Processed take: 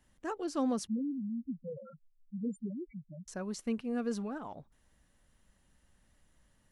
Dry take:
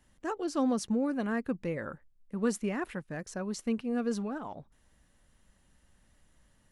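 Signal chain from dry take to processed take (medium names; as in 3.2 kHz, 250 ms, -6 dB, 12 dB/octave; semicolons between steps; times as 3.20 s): 0.87–3.28 s: loudest bins only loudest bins 2; trim -3 dB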